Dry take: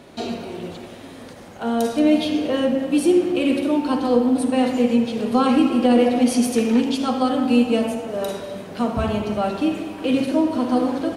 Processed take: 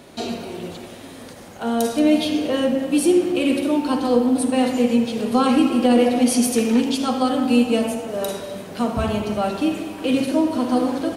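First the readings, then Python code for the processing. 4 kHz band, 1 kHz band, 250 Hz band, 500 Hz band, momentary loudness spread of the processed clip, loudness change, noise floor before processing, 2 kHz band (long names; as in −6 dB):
+2.0 dB, 0.0 dB, 0.0 dB, 0.0 dB, 13 LU, 0.0 dB, −40 dBFS, +1.0 dB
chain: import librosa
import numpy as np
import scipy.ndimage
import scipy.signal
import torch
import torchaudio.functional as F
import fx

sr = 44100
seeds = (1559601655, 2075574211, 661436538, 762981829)

y = fx.high_shelf(x, sr, hz=5900.0, db=8.0)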